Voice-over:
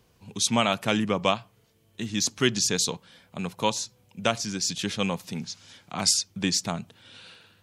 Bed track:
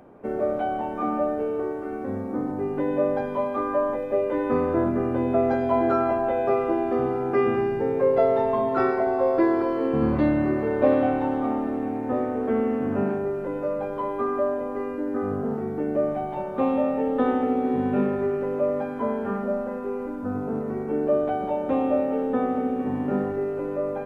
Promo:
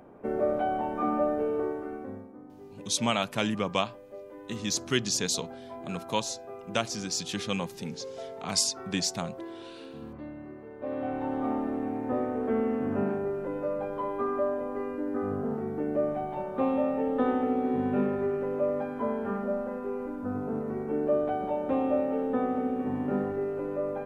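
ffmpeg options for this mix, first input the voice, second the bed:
ffmpeg -i stem1.wav -i stem2.wav -filter_complex "[0:a]adelay=2500,volume=-4dB[link_01];[1:a]volume=14.5dB,afade=type=out:start_time=1.63:duration=0.7:silence=0.11885,afade=type=in:start_time=10.79:duration=0.71:silence=0.149624[link_02];[link_01][link_02]amix=inputs=2:normalize=0" out.wav

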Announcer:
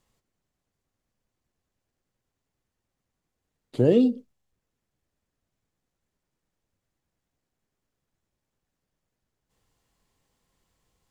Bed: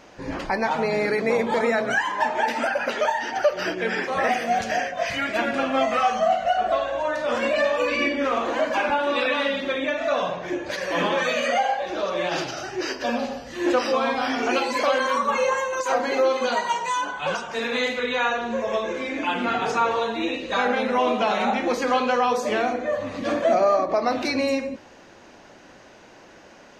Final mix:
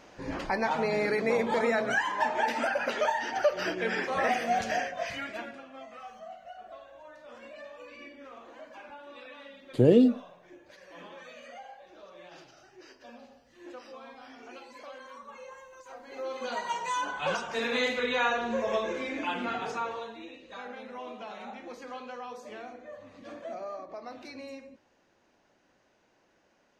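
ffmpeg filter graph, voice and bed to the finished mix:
ffmpeg -i stem1.wav -i stem2.wav -filter_complex "[0:a]adelay=6000,volume=-0.5dB[link_01];[1:a]volume=15.5dB,afade=type=out:start_time=4.7:duration=0.92:silence=0.105925,afade=type=in:start_time=16.06:duration=1.15:silence=0.0944061,afade=type=out:start_time=18.72:duration=1.55:silence=0.158489[link_02];[link_01][link_02]amix=inputs=2:normalize=0" out.wav

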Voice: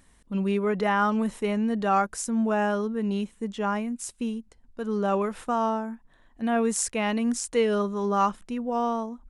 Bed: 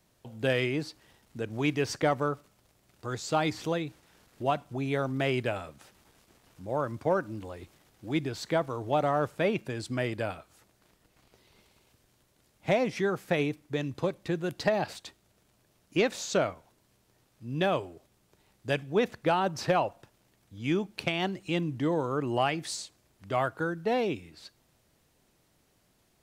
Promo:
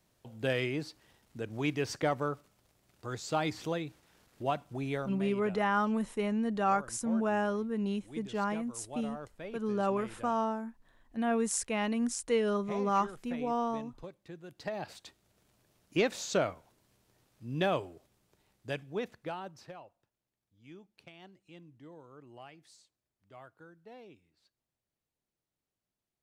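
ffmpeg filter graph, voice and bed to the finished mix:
ffmpeg -i stem1.wav -i stem2.wav -filter_complex "[0:a]adelay=4750,volume=-5.5dB[link_01];[1:a]volume=10dB,afade=type=out:start_time=4.9:duration=0.31:silence=0.237137,afade=type=in:start_time=14.5:duration=0.95:silence=0.199526,afade=type=out:start_time=17.73:duration=2.03:silence=0.0891251[link_02];[link_01][link_02]amix=inputs=2:normalize=0" out.wav

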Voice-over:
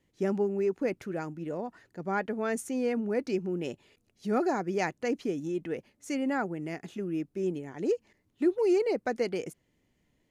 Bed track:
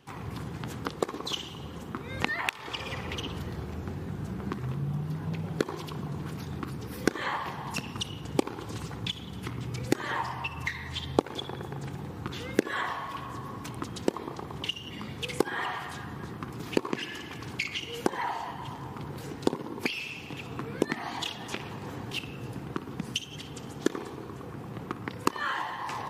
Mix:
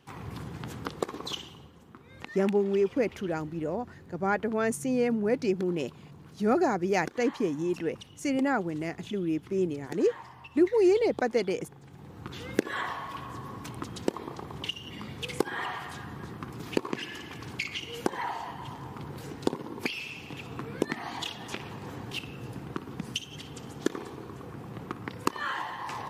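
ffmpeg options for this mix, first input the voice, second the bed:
ffmpeg -i stem1.wav -i stem2.wav -filter_complex "[0:a]adelay=2150,volume=3dB[link_01];[1:a]volume=10.5dB,afade=type=out:start_time=1.28:duration=0.44:silence=0.251189,afade=type=in:start_time=11.87:duration=0.67:silence=0.237137[link_02];[link_01][link_02]amix=inputs=2:normalize=0" out.wav

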